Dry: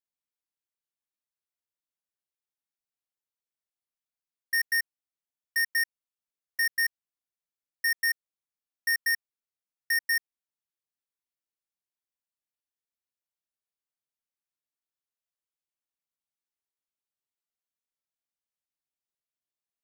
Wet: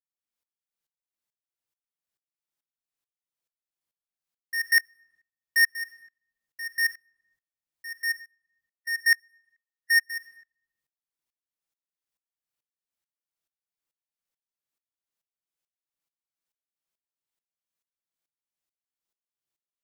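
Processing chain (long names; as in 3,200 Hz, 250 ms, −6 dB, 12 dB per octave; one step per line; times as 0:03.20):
0:08.03–0:10.10: harmonic and percussive parts rebalanced percussive −15 dB
rectangular room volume 3,700 cubic metres, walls furnished, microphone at 0.74 metres
tremolo with a ramp in dB swelling 2.3 Hz, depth 24 dB
level +7 dB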